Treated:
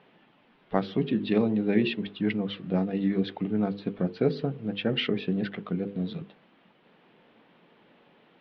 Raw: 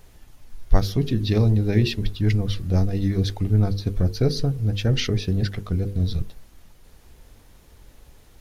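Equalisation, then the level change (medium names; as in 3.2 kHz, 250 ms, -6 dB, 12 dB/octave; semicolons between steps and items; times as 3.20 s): elliptic band-pass 180–3100 Hz, stop band 40 dB; 0.0 dB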